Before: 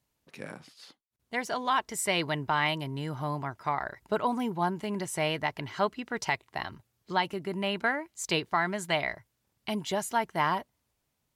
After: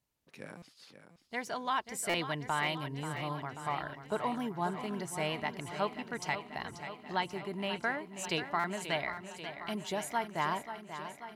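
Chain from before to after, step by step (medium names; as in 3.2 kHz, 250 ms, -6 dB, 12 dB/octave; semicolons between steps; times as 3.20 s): buffer glitch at 0.57/1.20/2.09/8.59 s, samples 256, times 8; modulated delay 536 ms, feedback 69%, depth 61 cents, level -10.5 dB; trim -5.5 dB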